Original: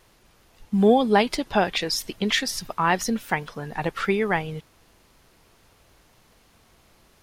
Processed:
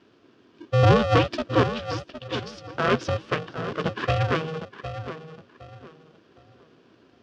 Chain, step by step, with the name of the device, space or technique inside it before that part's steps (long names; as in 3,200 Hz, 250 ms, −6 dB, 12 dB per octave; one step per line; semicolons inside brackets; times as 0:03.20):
0:01.63–0:02.75: guitar amp tone stack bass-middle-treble 5-5-5
tape delay 761 ms, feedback 32%, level −9 dB, low-pass 1,400 Hz
ring modulator pedal into a guitar cabinet (ring modulator with a square carrier 320 Hz; loudspeaker in its box 98–4,400 Hz, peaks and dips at 120 Hz +6 dB, 240 Hz +6 dB, 400 Hz +6 dB, 860 Hz −9 dB, 2,100 Hz −9 dB, 4,000 Hz −6 dB)